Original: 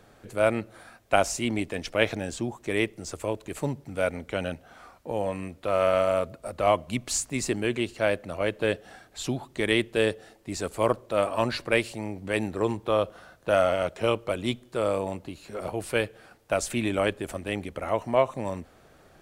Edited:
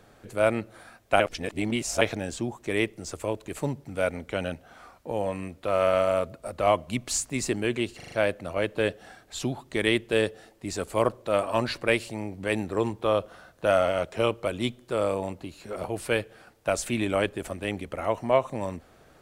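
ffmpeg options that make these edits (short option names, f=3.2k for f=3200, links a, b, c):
-filter_complex "[0:a]asplit=7[a][b][c][d][e][f][g];[a]atrim=end=1.202[h];[b]atrim=start=1.198:end=2.012,asetpts=PTS-STARTPTS,areverse[i];[c]atrim=start=2.008:end=8.002[j];[d]atrim=start=7.958:end=8.002[k];[e]atrim=start=7.958:end=8.002[l];[f]atrim=start=7.958:end=8.002[m];[g]atrim=start=7.958[n];[h][i]acrossfade=d=0.004:c1=hsin:c2=hsin[o];[o][j]acrossfade=d=0.004:c1=hsin:c2=hsin[p];[p][k]acrossfade=d=0.004:c1=hsin:c2=hsin[q];[q][l]acrossfade=d=0.004:c1=hsin:c2=hsin[r];[r][m]acrossfade=d=0.004:c1=hsin:c2=hsin[s];[s][n]acrossfade=d=0.004:c1=hsin:c2=hsin"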